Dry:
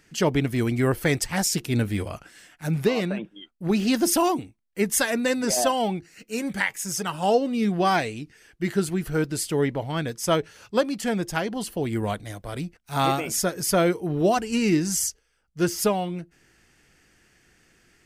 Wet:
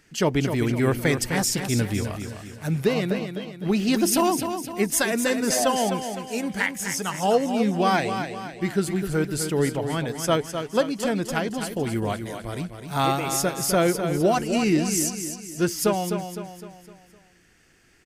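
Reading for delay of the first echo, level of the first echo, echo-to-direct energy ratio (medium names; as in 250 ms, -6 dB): 255 ms, -8.0 dB, -7.0 dB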